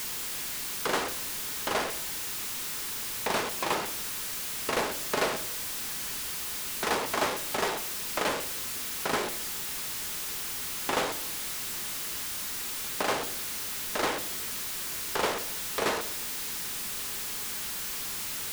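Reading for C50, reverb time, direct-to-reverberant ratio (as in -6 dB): 14.5 dB, 0.75 s, 10.0 dB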